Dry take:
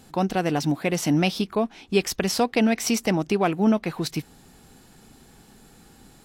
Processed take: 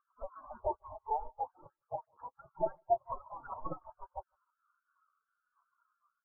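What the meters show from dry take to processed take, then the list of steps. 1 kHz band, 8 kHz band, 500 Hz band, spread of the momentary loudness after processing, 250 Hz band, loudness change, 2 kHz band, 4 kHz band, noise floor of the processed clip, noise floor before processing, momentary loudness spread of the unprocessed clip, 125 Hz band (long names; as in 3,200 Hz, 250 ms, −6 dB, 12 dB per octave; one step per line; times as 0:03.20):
−8.0 dB, below −40 dB, −14.0 dB, 15 LU, −33.5 dB, −16.0 dB, −33.0 dB, below −40 dB, below −85 dBFS, −53 dBFS, 6 LU, −28.0 dB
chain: converter with a step at zero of −26.5 dBFS
low-pass filter 1,000 Hz 24 dB per octave
parametric band 66 Hz −4 dB 0.75 octaves
brickwall limiter −19 dBFS, peak gain reduction 10 dB
gate on every frequency bin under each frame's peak −25 dB weak
repeating echo 155 ms, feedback 32%, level −10 dB
every bin expanded away from the loudest bin 4 to 1
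level +14 dB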